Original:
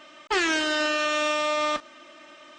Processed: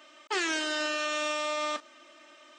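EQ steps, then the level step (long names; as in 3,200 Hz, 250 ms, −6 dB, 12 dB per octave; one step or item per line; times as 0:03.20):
high-pass filter 240 Hz 24 dB per octave
high-shelf EQ 7,400 Hz +9.5 dB
−6.5 dB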